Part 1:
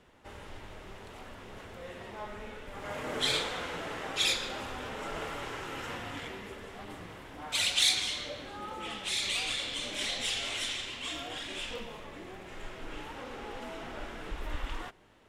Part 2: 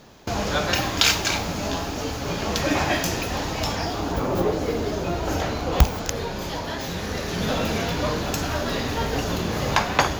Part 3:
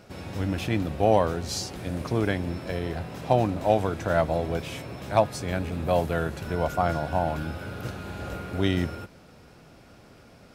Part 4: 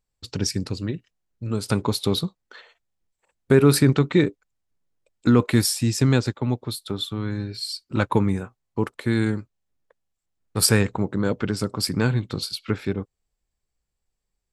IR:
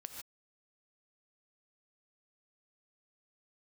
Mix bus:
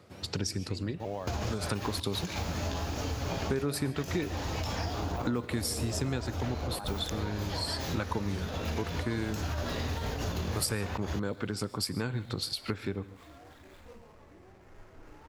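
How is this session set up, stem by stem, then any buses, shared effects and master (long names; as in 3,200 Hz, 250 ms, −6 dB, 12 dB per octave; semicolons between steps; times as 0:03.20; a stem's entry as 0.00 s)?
−10.0 dB, 2.15 s, no send, running median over 15 samples
−3.5 dB, 1.00 s, no send, mains-hum notches 50/100/150/200/250/300/350/400/450 Hz; compressor whose output falls as the input rises −26 dBFS, ratio −0.5
−5.0 dB, 0.00 s, no send, high-pass filter 140 Hz; pitch modulation by a square or saw wave saw up 3.8 Hz, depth 250 cents; automatic ducking −9 dB, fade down 0.40 s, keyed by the fourth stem
+0.5 dB, 0.00 s, send −7.5 dB, high-pass filter 240 Hz 6 dB per octave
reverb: on, pre-delay 3 ms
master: parametric band 84 Hz +11 dB 0.77 octaves; downward compressor 4 to 1, threshold −31 dBFS, peak gain reduction 18 dB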